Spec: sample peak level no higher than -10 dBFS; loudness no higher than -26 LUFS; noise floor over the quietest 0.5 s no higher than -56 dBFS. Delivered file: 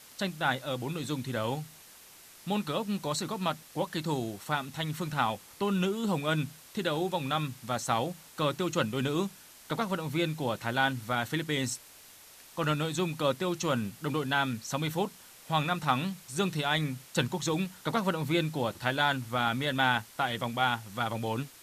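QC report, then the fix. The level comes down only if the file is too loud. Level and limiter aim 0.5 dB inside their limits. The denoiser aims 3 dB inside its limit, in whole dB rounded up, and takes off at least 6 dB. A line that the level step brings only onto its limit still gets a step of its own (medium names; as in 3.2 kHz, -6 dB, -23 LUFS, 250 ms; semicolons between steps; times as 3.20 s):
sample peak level -10.5 dBFS: pass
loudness -31.0 LUFS: pass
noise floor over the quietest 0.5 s -53 dBFS: fail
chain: noise reduction 6 dB, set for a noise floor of -53 dBFS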